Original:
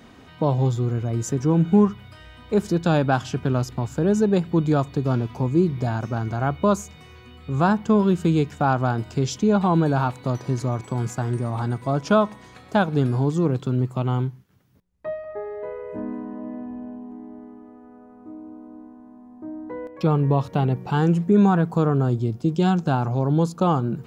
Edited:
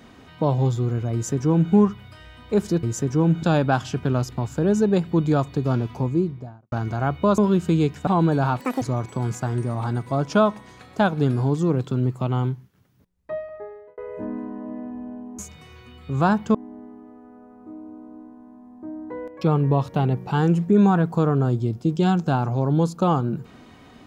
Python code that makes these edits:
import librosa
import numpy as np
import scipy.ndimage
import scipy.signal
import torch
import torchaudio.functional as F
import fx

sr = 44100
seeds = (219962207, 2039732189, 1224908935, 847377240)

y = fx.studio_fade_out(x, sr, start_s=5.31, length_s=0.81)
y = fx.edit(y, sr, fx.duplicate(start_s=1.13, length_s=0.6, to_s=2.83),
    fx.move(start_s=6.78, length_s=1.16, to_s=17.14),
    fx.cut(start_s=8.63, length_s=0.98),
    fx.speed_span(start_s=10.14, length_s=0.43, speed=1.99),
    fx.fade_out_span(start_s=15.15, length_s=0.58), tone=tone)